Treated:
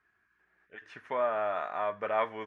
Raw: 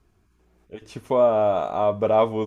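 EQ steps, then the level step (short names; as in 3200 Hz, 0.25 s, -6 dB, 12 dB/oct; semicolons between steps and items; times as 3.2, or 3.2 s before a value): synth low-pass 1700 Hz, resonance Q 6.8; differentiator; low shelf 230 Hz +8.5 dB; +6.5 dB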